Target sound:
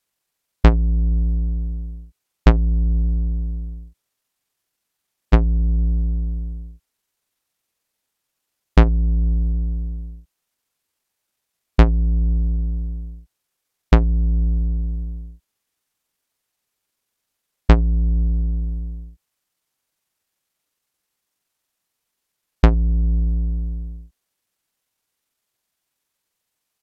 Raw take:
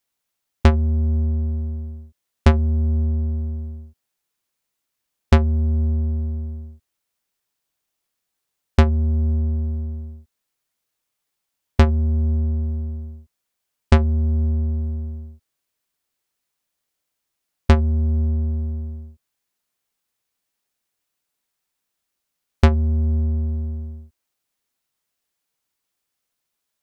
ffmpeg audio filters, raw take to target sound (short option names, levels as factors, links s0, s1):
-af "asetrate=32097,aresample=44100,atempo=1.37395,volume=1.19"